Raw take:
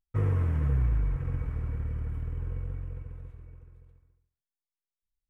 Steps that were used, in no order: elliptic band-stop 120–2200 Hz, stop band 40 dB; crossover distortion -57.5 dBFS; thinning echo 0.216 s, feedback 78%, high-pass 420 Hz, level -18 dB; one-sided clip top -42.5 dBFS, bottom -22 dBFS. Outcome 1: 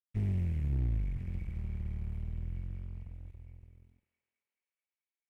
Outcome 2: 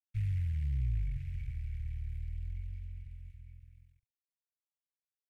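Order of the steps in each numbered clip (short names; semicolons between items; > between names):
elliptic band-stop > crossover distortion > thinning echo > one-sided clip; thinning echo > one-sided clip > crossover distortion > elliptic band-stop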